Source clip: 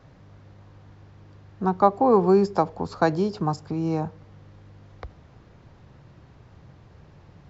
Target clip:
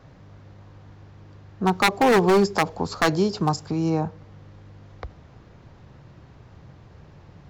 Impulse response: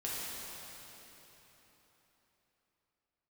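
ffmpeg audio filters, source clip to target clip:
-filter_complex "[0:a]aeval=exprs='0.2*(abs(mod(val(0)/0.2+3,4)-2)-1)':c=same,asettb=1/sr,asplit=3[a][b][c];[a]atrim=end=1.664[d];[b]atrim=start=1.66:end=3.9,asetpts=PTS-STARTPTS,afade=t=in:d=0.004:c=qsin,afade=t=out:st=2.236:d=0.004:c=qsin,highshelf=f=3.5k:g=10[e];[c]atrim=start=3.896[f];[d][e]acrossfade=d=0.004:c1=hsin:c2=qsin[g];[g][f]acrossfade=d=0.004:c1=qsin:c2=hsin,volume=2.5dB"

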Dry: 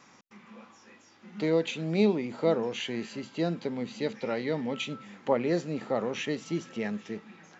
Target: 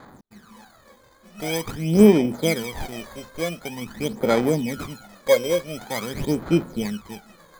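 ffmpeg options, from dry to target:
-af "acrusher=samples=16:mix=1:aa=0.000001,aphaser=in_gain=1:out_gain=1:delay=1.9:decay=0.72:speed=0.46:type=sinusoidal,volume=1.5dB"

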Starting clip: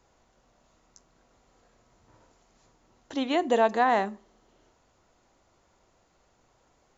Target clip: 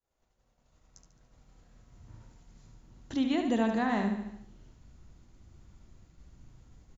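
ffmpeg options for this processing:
-filter_complex "[0:a]equalizer=f=1k:t=o:w=0.82:g=-2.5,bandreject=f=94.16:t=h:w=4,bandreject=f=188.32:t=h:w=4,bandreject=f=282.48:t=h:w=4,bandreject=f=376.64:t=h:w=4,bandreject=f=470.8:t=h:w=4,bandreject=f=564.96:t=h:w=4,bandreject=f=659.12:t=h:w=4,bandreject=f=753.28:t=h:w=4,bandreject=f=847.44:t=h:w=4,bandreject=f=941.6:t=h:w=4,bandreject=f=1.03576k:t=h:w=4,bandreject=f=1.12992k:t=h:w=4,bandreject=f=1.22408k:t=h:w=4,bandreject=f=1.31824k:t=h:w=4,bandreject=f=1.4124k:t=h:w=4,bandreject=f=1.50656k:t=h:w=4,bandreject=f=1.60072k:t=h:w=4,bandreject=f=1.69488k:t=h:w=4,bandreject=f=1.78904k:t=h:w=4,bandreject=f=1.8832k:t=h:w=4,bandreject=f=1.97736k:t=h:w=4,bandreject=f=2.07152k:t=h:w=4,bandreject=f=2.16568k:t=h:w=4,bandreject=f=2.25984k:t=h:w=4,bandreject=f=2.354k:t=h:w=4,bandreject=f=2.44816k:t=h:w=4,bandreject=f=2.54232k:t=h:w=4,bandreject=f=2.63648k:t=h:w=4,bandreject=f=2.73064k:t=h:w=4,bandreject=f=2.8248k:t=h:w=4,bandreject=f=2.91896k:t=h:w=4,asplit=2[a][b];[b]aecho=0:1:72|144|216|288|360|432:0.447|0.219|0.107|0.0526|0.0258|0.0126[c];[a][c]amix=inputs=2:normalize=0,asubboost=boost=10.5:cutoff=180,agate=range=-33dB:threshold=-53dB:ratio=3:detection=peak,asplit=2[d][e];[e]acompressor=threshold=-30dB:ratio=6,volume=2.5dB[f];[d][f]amix=inputs=2:normalize=0,volume=-8.5dB"

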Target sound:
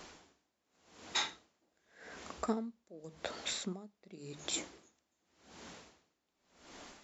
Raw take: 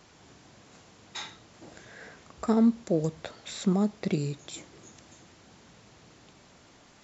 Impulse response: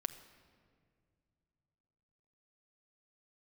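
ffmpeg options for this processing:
-af "equalizer=f=120:w=2.1:g=-14.5,bandreject=f=50:t=h:w=6,bandreject=f=100:t=h:w=6,bandreject=f=150:t=h:w=6,bandreject=f=200:t=h:w=6,aeval=exprs='val(0)*pow(10,-34*(0.5-0.5*cos(2*PI*0.88*n/s))/20)':c=same,volume=5.5dB"

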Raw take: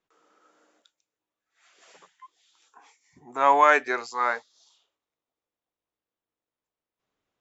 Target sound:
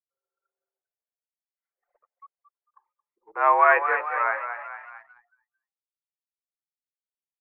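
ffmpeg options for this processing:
-filter_complex "[0:a]highpass=f=300:t=q:w=0.5412,highpass=f=300:t=q:w=1.307,lowpass=f=2.3k:t=q:w=0.5176,lowpass=f=2.3k:t=q:w=0.7071,lowpass=f=2.3k:t=q:w=1.932,afreqshift=80,asplit=7[a][b][c][d][e][f][g];[b]adelay=223,afreqshift=42,volume=-8.5dB[h];[c]adelay=446,afreqshift=84,volume=-14dB[i];[d]adelay=669,afreqshift=126,volume=-19.5dB[j];[e]adelay=892,afreqshift=168,volume=-25dB[k];[f]adelay=1115,afreqshift=210,volume=-30.6dB[l];[g]adelay=1338,afreqshift=252,volume=-36.1dB[m];[a][h][i][j][k][l][m]amix=inputs=7:normalize=0,anlmdn=0.0631"

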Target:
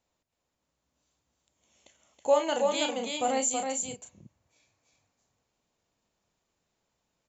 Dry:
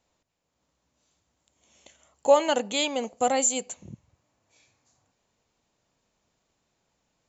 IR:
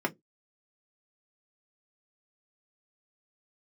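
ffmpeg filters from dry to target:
-filter_complex "[0:a]asettb=1/sr,asplit=3[a][b][c];[a]atrim=end=2.294[d];[b]atrim=start=2.29:end=3.91,asetpts=PTS-STARTPTS,afade=t=in:d=0.004:c=qsin,afade=t=out:st=1.616:d=0.004:c=qsin,asplit=2[e][f];[f]adelay=34,volume=-6dB[g];[e][g]amix=inputs=2:normalize=0,atrim=end_sample=71442[h];[c]atrim=start=3.906[i];[d][h]acrossfade=d=0.004:c1=hsin:c2=qsin[j];[j][i]acrossfade=d=0.004:c1=qsin:c2=hsin,aecho=1:1:324:0.631,volume=-6dB"

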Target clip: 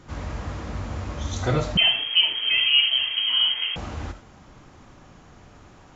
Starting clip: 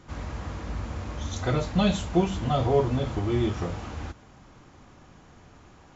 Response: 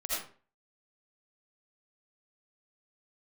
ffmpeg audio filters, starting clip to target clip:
-filter_complex "[0:a]flanger=delay=6.7:depth=8.8:regen=-76:speed=1.2:shape=triangular,asplit=2[a][b];[1:a]atrim=start_sample=2205,afade=t=out:st=0.14:d=0.01,atrim=end_sample=6615[c];[b][c]afir=irnorm=-1:irlink=0,volume=-10dB[d];[a][d]amix=inputs=2:normalize=0,asettb=1/sr,asplit=3[e][f][g];[e]atrim=end=1.774[h];[f]atrim=start=1.77:end=3.76,asetpts=PTS-STARTPTS,afade=t=in:d=0.004:c=qsin,afade=t=out:st=1.986:d=0.004:c=qsin,lowpass=f=2.8k:t=q:w=0.5098,lowpass=f=2.8k:t=q:w=0.6013,lowpass=f=2.8k:t=q:w=0.9,lowpass=f=2.8k:t=q:w=2.563,afreqshift=-3300[i];[g]atrim=start=3.756[j];[h][i]acrossfade=d=0.004:c1=hsin:c2=qsin[k];[k][j]acrossfade=d=0.004:c1=qsin:c2=hsin,volume=5.5dB"

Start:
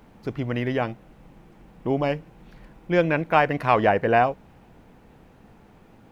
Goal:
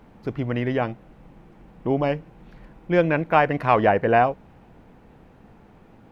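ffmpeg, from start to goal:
-af "highshelf=f=3.8k:g=-8,volume=1.5dB"

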